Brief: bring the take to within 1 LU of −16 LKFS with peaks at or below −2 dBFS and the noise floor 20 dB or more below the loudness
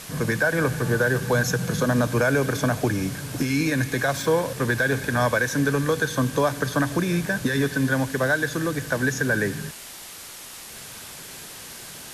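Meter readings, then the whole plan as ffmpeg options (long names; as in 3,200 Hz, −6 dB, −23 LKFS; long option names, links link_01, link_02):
background noise floor −40 dBFS; target noise floor −44 dBFS; integrated loudness −23.5 LKFS; sample peak −10.5 dBFS; target loudness −16.0 LKFS
→ -af "afftdn=noise_reduction=6:noise_floor=-40"
-af "volume=7.5dB"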